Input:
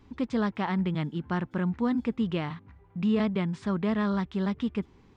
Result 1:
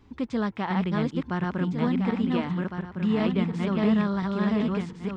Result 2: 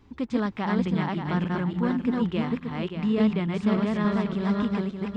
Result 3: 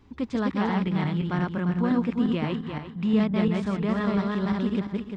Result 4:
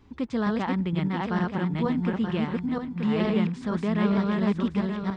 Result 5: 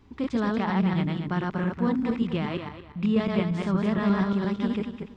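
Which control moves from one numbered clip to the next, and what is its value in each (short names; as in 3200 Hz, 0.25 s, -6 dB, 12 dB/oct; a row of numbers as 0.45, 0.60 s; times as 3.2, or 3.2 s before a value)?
regenerating reverse delay, time: 0.704, 0.289, 0.174, 0.464, 0.117 s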